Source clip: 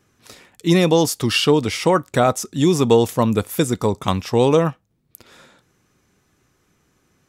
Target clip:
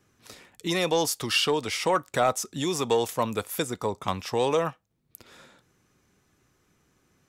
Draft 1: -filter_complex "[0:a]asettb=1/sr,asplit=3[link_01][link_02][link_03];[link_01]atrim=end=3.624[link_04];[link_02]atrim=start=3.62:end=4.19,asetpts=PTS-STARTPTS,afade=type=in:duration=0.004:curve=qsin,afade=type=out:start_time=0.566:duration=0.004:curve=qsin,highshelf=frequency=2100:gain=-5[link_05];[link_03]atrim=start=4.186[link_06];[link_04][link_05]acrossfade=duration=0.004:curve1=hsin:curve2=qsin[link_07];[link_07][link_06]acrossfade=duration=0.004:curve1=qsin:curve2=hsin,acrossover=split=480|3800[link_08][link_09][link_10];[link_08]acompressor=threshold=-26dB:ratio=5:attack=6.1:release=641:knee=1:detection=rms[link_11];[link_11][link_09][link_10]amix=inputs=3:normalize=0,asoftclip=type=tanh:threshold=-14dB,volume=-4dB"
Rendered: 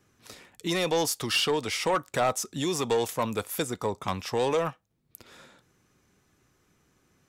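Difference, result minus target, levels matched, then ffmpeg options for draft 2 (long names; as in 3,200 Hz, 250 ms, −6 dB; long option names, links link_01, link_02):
soft clipping: distortion +10 dB
-filter_complex "[0:a]asettb=1/sr,asplit=3[link_01][link_02][link_03];[link_01]atrim=end=3.624[link_04];[link_02]atrim=start=3.62:end=4.19,asetpts=PTS-STARTPTS,afade=type=in:duration=0.004:curve=qsin,afade=type=out:start_time=0.566:duration=0.004:curve=qsin,highshelf=frequency=2100:gain=-5[link_05];[link_03]atrim=start=4.186[link_06];[link_04][link_05]acrossfade=duration=0.004:curve1=hsin:curve2=qsin[link_07];[link_07][link_06]acrossfade=duration=0.004:curve1=qsin:curve2=hsin,acrossover=split=480|3800[link_08][link_09][link_10];[link_08]acompressor=threshold=-26dB:ratio=5:attack=6.1:release=641:knee=1:detection=rms[link_11];[link_11][link_09][link_10]amix=inputs=3:normalize=0,asoftclip=type=tanh:threshold=-7dB,volume=-4dB"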